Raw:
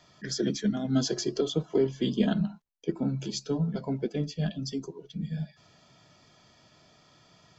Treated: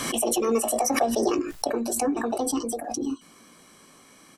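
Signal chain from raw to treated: in parallel at 0 dB: compressor, threshold -38 dBFS, peak gain reduction 17.5 dB; on the sum: doubler 31 ms -11 dB; speed mistake 45 rpm record played at 78 rpm; backwards sustainer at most 33 dB/s

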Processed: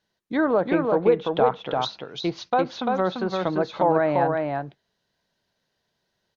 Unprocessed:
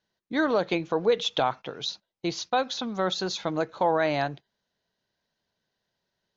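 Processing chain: treble ducked by the level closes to 1400 Hz, closed at -24.5 dBFS; on a send: echo 0.343 s -3.5 dB; on the sum: gain +3.5 dB

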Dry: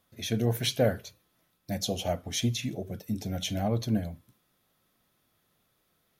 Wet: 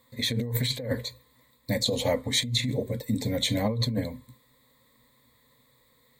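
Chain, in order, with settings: ripple EQ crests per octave 1, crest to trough 17 dB; negative-ratio compressor -28 dBFS, ratio -1; gain +1.5 dB

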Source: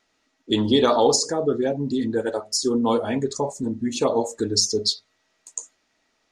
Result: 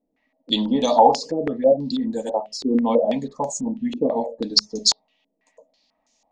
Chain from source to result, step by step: fixed phaser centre 380 Hz, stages 6; stepped low-pass 6.1 Hz 380–6700 Hz; gain +1 dB

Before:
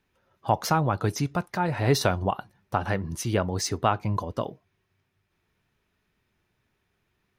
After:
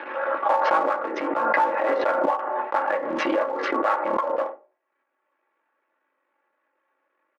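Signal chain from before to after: cycle switcher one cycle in 3, muted; transient shaper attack -2 dB, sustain -7 dB; Bessel low-pass 1400 Hz, order 4; comb 3.6 ms, depth 65%; on a send at -1 dB: reverb RT60 0.35 s, pre-delay 3 ms; on the sum: limiter -15.5 dBFS, peak gain reduction 5.5 dB; in parallel at -4 dB: one-sided clip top -30 dBFS; on the sum: HPF 440 Hz 24 dB/oct; backwards sustainer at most 25 dB/s; gain +2.5 dB

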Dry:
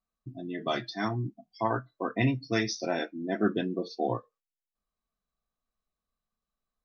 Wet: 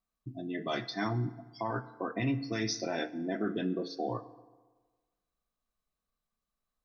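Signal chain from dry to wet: limiter -23 dBFS, peak gain reduction 9.5 dB; FDN reverb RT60 1.4 s, low-frequency decay 0.9×, high-frequency decay 0.6×, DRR 13.5 dB

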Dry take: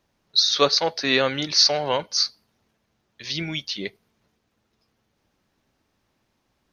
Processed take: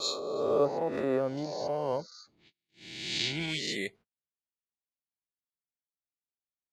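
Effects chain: spectral swells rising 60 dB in 1.74 s; careless resampling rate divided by 4×, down none, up zero stuff; high shelf 5900 Hz -3 dB; spectral gate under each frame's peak -30 dB strong; low-pass opened by the level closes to 1800 Hz, open at -12 dBFS; gate -45 dBFS, range -37 dB; 1.37–3.46 bell 4600 Hz +7.5 dB 1.8 oct; treble ducked by the level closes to 660 Hz, closed at -11.5 dBFS; gain -7 dB

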